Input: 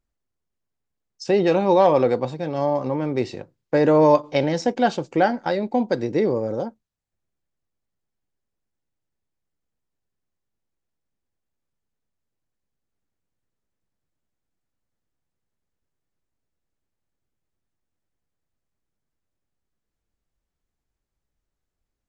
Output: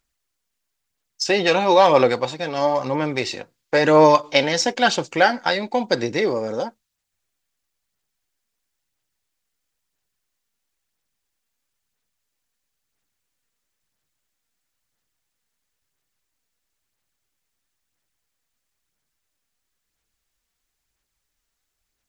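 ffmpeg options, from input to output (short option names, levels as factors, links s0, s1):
-af "tiltshelf=f=970:g=-8.5,aphaser=in_gain=1:out_gain=1:delay=4.4:decay=0.32:speed=1:type=sinusoidal,volume=1.68"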